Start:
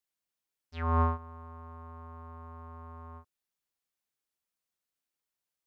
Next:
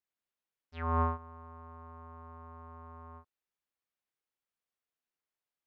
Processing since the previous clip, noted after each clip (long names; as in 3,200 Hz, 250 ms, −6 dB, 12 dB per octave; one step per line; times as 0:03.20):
bass and treble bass −3 dB, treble −10 dB
level −1.5 dB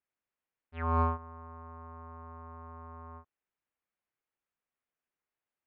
low-pass filter 2,700 Hz 24 dB per octave
in parallel at −10 dB: soft clipping −27.5 dBFS, distortion −11 dB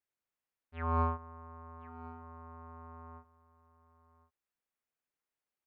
single-tap delay 1,060 ms −17 dB
level −2.5 dB